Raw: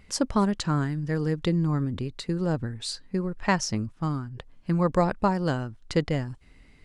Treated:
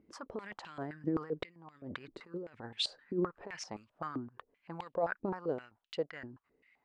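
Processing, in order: Doppler pass-by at 2.27 s, 6 m/s, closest 4.9 m; compressor with a negative ratio -32 dBFS, ratio -0.5; step-sequenced band-pass 7.7 Hz 320–3000 Hz; trim +9.5 dB

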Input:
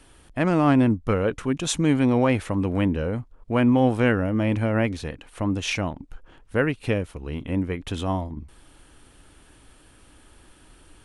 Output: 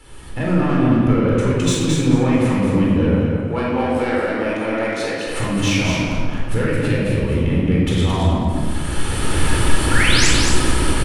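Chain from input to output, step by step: recorder AGC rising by 21 dB/s; 3.14–5.27 s: high-pass 450 Hz 12 dB/octave; compression 2:1, threshold -28 dBFS, peak gain reduction 8 dB; saturation -20 dBFS, distortion -18 dB; 9.91–10.28 s: painted sound rise 1.3–8.3 kHz -27 dBFS; feedback delay 219 ms, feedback 23%, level -4.5 dB; simulated room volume 1500 m³, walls mixed, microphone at 4.2 m; trim +2 dB

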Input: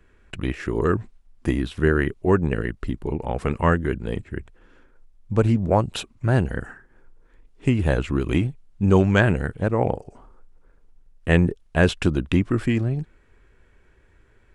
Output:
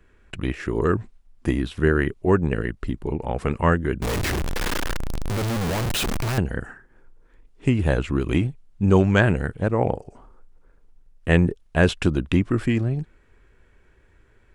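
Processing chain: 4.02–6.38 s: one-bit comparator

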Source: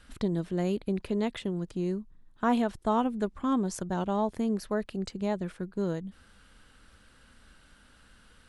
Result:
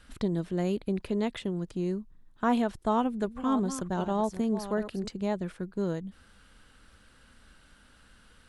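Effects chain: 2.84–5.08 s: chunks repeated in reverse 391 ms, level -11 dB

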